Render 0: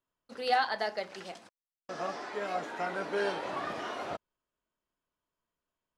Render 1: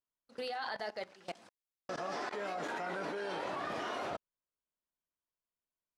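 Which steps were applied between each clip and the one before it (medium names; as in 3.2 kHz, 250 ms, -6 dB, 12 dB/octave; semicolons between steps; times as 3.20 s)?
level held to a coarse grid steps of 21 dB; trim +3.5 dB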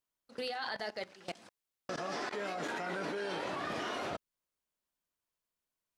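dynamic bell 820 Hz, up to -5 dB, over -52 dBFS, Q 0.71; trim +4 dB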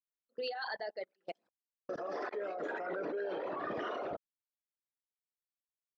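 resonances exaggerated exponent 2; upward expansion 2.5:1, over -54 dBFS; trim +1.5 dB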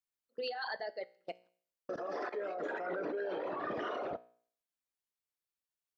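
feedback comb 60 Hz, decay 0.52 s, harmonics all, mix 40%; trim +3.5 dB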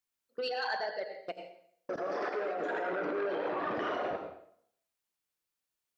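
reverberation RT60 0.60 s, pre-delay 80 ms, DRR 4 dB; transformer saturation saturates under 850 Hz; trim +4 dB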